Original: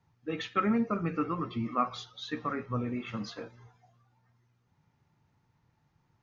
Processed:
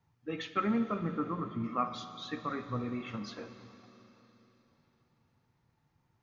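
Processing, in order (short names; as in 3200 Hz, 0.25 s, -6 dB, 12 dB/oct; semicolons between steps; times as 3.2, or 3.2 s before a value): 0.99–1.64 polynomial smoothing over 41 samples; Schroeder reverb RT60 3.9 s, combs from 31 ms, DRR 10 dB; gain -3 dB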